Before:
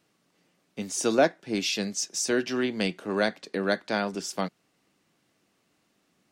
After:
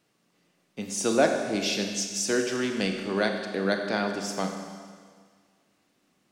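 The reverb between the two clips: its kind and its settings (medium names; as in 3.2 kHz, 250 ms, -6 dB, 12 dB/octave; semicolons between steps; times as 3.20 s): Schroeder reverb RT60 1.8 s, combs from 31 ms, DRR 4 dB; trim -1 dB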